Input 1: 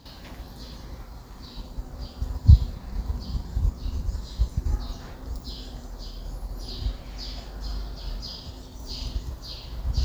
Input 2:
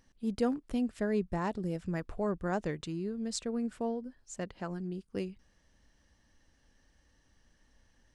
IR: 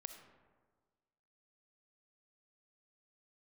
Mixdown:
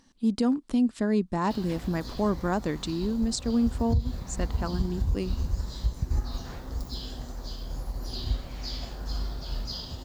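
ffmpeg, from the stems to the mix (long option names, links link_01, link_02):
-filter_complex "[0:a]adelay=1450,volume=1dB[link_01];[1:a]equalizer=frequency=250:width_type=o:width=1:gain=11,equalizer=frequency=1000:width_type=o:width=1:gain=8,equalizer=frequency=4000:width_type=o:width=1:gain=9,equalizer=frequency=8000:width_type=o:width=1:gain=7,volume=0dB[link_02];[link_01][link_02]amix=inputs=2:normalize=0,alimiter=limit=-16.5dB:level=0:latency=1:release=176"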